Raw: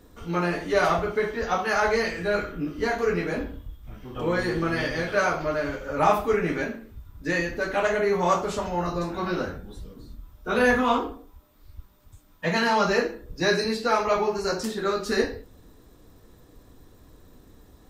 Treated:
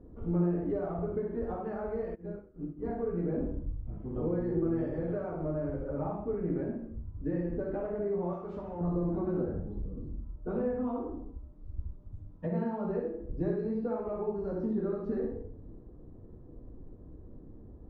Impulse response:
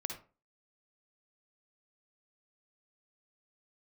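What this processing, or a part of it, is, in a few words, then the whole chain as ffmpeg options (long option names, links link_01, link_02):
television next door: -filter_complex "[0:a]acompressor=threshold=-30dB:ratio=5,lowpass=480[link_01];[1:a]atrim=start_sample=2205[link_02];[link_01][link_02]afir=irnorm=-1:irlink=0,asplit=3[link_03][link_04][link_05];[link_03]afade=type=out:start_time=2.14:duration=0.02[link_06];[link_04]agate=range=-33dB:threshold=-26dB:ratio=3:detection=peak,afade=type=in:start_time=2.14:duration=0.02,afade=type=out:start_time=2.83:duration=0.02[link_07];[link_05]afade=type=in:start_time=2.83:duration=0.02[link_08];[link_06][link_07][link_08]amix=inputs=3:normalize=0,asettb=1/sr,asplit=3[link_09][link_10][link_11];[link_09]atrim=end=8.334[link_12];[link_10]atrim=start=8.33:end=8.81,asetpts=PTS-STARTPTS,afade=type=in:duration=0.004:curve=qsin,afade=type=out:start_time=0.476:duration=0.004:curve=qsin,tiltshelf=frequency=1100:gain=-7.5[link_13];[link_11]atrim=start=8.806[link_14];[link_12][link_13]acrossfade=duration=0.004:curve1=hsin:curve2=qsin[link_15];[link_15][link_14]acrossfade=duration=0.004:curve1=qsin:curve2=hsin,asettb=1/sr,asplit=3[link_16][link_17][link_18];[link_16]atrim=end=11.134[link_19];[link_17]atrim=start=11.13:end=12.47,asetpts=PTS-STARTPTS,afade=type=in:duration=0.004:curve=qsin,afade=type=out:start_time=1.336:duration=0.004:curve=qsin,bass=frequency=250:gain=4,treble=frequency=4000:gain=14[link_20];[link_18]atrim=start=12.466[link_21];[link_19][link_20]acrossfade=duration=0.004:curve1=hsin:curve2=qsin[link_22];[link_22][link_21]acrossfade=duration=0.004:curve1=qsin:curve2=hsin,volume=3dB"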